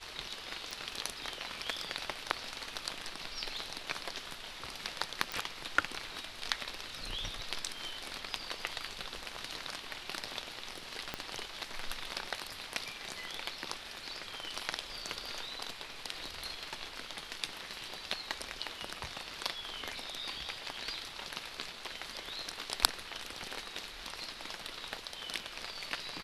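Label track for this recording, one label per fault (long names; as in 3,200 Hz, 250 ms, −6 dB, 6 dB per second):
0.710000	0.710000	click
5.320000	5.320000	click
11.140000	11.140000	click −19 dBFS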